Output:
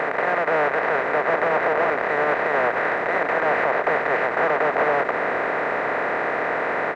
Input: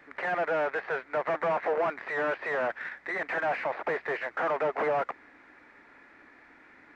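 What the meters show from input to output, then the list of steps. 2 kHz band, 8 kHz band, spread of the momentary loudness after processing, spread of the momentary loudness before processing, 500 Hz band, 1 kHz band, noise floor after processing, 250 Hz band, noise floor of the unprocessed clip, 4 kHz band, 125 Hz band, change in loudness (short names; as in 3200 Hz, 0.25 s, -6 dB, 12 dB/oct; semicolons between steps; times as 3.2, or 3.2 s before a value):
+11.0 dB, n/a, 3 LU, 5 LU, +9.0 dB, +11.0 dB, -26 dBFS, +10.5 dB, -57 dBFS, +9.5 dB, +9.5 dB, +9.0 dB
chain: per-bin compression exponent 0.2; limiter -13 dBFS, peak gain reduction 5.5 dB; frequency-shifting echo 0.466 s, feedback 47%, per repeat -72 Hz, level -14.5 dB; ending taper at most 200 dB/s; gain +1.5 dB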